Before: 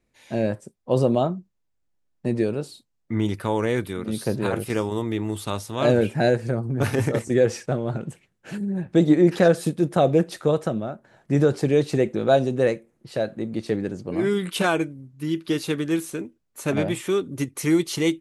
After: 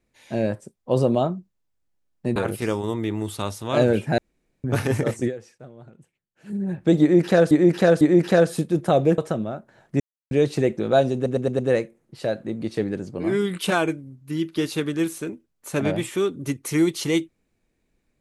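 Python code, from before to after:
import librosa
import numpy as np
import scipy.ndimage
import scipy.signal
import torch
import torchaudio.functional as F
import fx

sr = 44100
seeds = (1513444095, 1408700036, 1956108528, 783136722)

y = fx.edit(x, sr, fx.cut(start_s=2.36, length_s=2.08),
    fx.room_tone_fill(start_s=6.26, length_s=0.46),
    fx.fade_down_up(start_s=7.35, length_s=1.24, db=-18.5, fade_s=0.23, curve='exp'),
    fx.repeat(start_s=9.09, length_s=0.5, count=3),
    fx.cut(start_s=10.26, length_s=0.28),
    fx.silence(start_s=11.36, length_s=0.31),
    fx.stutter(start_s=12.51, slice_s=0.11, count=5), tone=tone)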